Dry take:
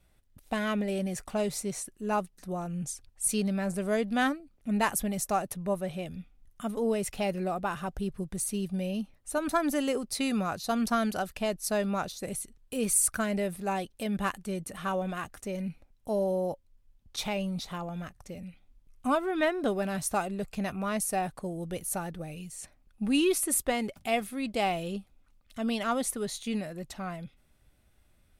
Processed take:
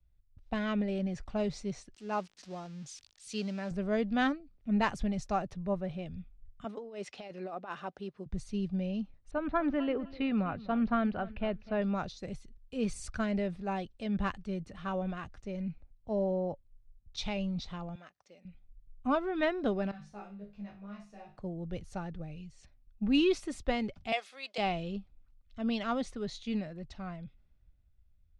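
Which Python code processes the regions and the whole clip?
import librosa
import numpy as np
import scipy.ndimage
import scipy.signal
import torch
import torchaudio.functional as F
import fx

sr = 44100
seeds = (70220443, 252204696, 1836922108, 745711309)

y = fx.chain(x, sr, fx.crossing_spikes(level_db=-30.0),
    fx.highpass(hz=310.0, slope=6), at=(1.94, 3.71))
y = fx.chain(y, sr, fx.highpass(hz=340.0, slope=12),
    fx.over_compress(threshold_db=-33.0, ratio=-0.5), at=(6.64, 8.26))
y = fx.chain(y, sr, fx.lowpass(hz=3000.0, slope=24),
    fx.echo_feedback(ms=253, feedback_pct=26, wet_db=-16.5), at=(9.31, 11.82))
y = fx.chain(y, sr, fx.highpass(hz=450.0, slope=12),
    fx.high_shelf(hz=8600.0, db=4.5), at=(17.95, 18.45))
y = fx.chain(y, sr, fx.high_shelf(hz=10000.0, db=-6.0),
    fx.comb_fb(f0_hz=51.0, decay_s=0.36, harmonics='all', damping=0.0, mix_pct=100),
    fx.ensemble(), at=(19.91, 21.38))
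y = fx.chain(y, sr, fx.highpass(hz=540.0, slope=24),
    fx.high_shelf(hz=4600.0, db=8.0),
    fx.band_squash(depth_pct=40), at=(24.12, 24.58))
y = scipy.signal.sosfilt(scipy.signal.butter(4, 5400.0, 'lowpass', fs=sr, output='sos'), y)
y = fx.low_shelf(y, sr, hz=160.0, db=11.0)
y = fx.band_widen(y, sr, depth_pct=40)
y = F.gain(torch.from_numpy(y), -5.0).numpy()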